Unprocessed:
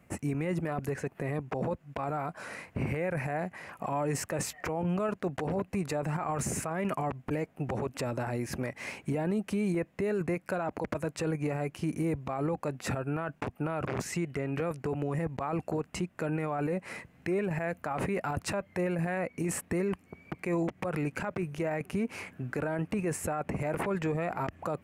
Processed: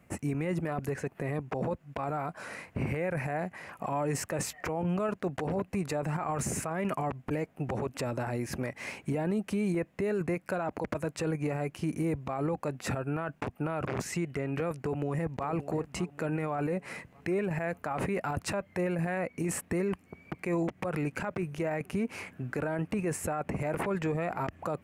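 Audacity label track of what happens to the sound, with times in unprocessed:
14.750000	15.460000	echo throw 580 ms, feedback 50%, level -14 dB

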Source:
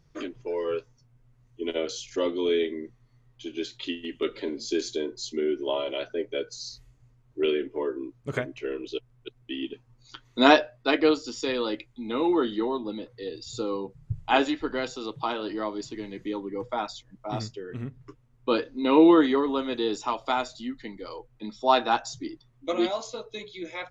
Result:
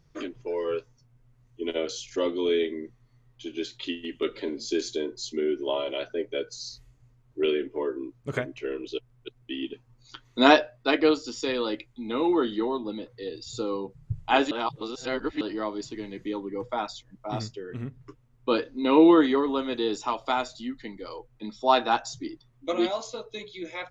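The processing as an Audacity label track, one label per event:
14.510000	15.410000	reverse

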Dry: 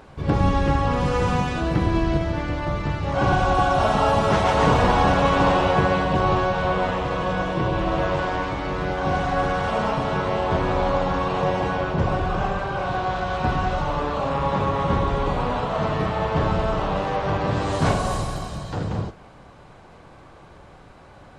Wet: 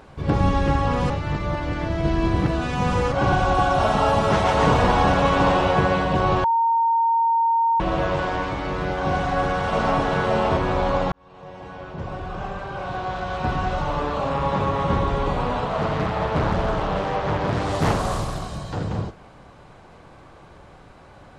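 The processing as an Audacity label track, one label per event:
1.100000	3.120000	reverse
6.440000	7.800000	bleep 919 Hz -16 dBFS
9.160000	10.010000	echo throw 560 ms, feedback 15%, level -2.5 dB
11.120000	13.970000	fade in
15.650000	18.490000	loudspeaker Doppler distortion depth 0.83 ms

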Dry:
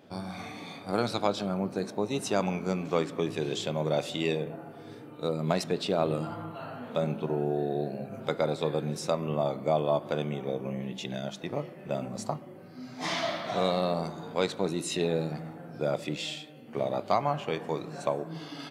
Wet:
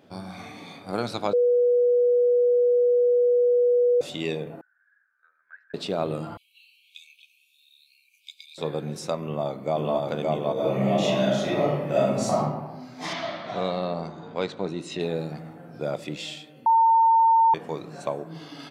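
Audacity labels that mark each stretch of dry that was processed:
1.330000	4.010000	bleep 487 Hz -16.5 dBFS
4.610000	5.740000	Butterworth band-pass 1.6 kHz, Q 8
6.370000	8.580000	brick-wall FIR high-pass 2.2 kHz
9.190000	9.950000	echo throw 570 ms, feedback 30%, level -0.5 dB
10.530000	12.400000	reverb throw, RT60 1.1 s, DRR -10.5 dB
13.130000	15.000000	distance through air 98 m
16.660000	17.540000	bleep 906 Hz -14.5 dBFS

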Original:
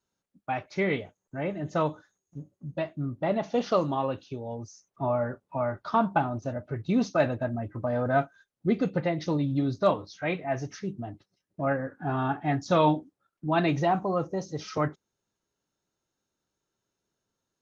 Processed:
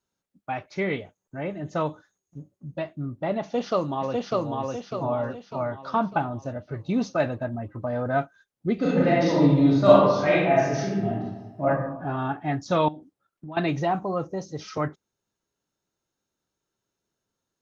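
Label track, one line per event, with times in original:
3.410000	4.540000	echo throw 600 ms, feedback 45%, level -1.5 dB
8.750000	11.650000	reverb throw, RT60 1.2 s, DRR -8.5 dB
12.880000	13.570000	compression 5:1, threshold -36 dBFS

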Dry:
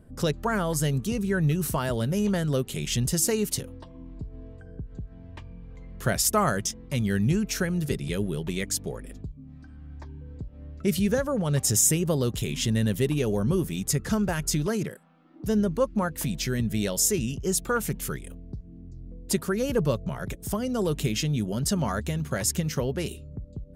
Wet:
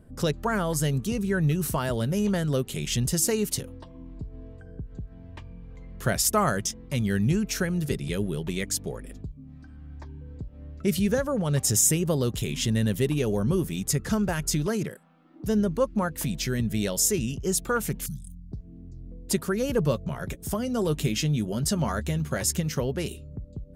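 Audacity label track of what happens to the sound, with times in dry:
18.060000	18.520000	elliptic band-stop 190–4600 Hz
19.820000	22.570000	doubling 13 ms -12 dB

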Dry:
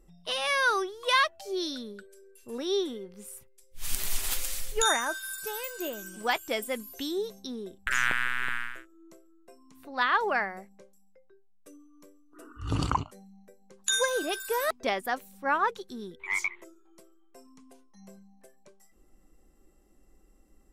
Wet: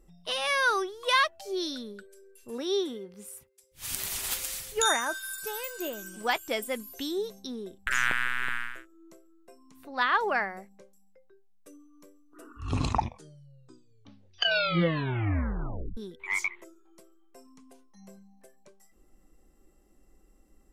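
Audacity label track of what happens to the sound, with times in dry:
2.500000	5.130000	high-pass 56 Hz
12.480000	12.480000	tape stop 3.49 s

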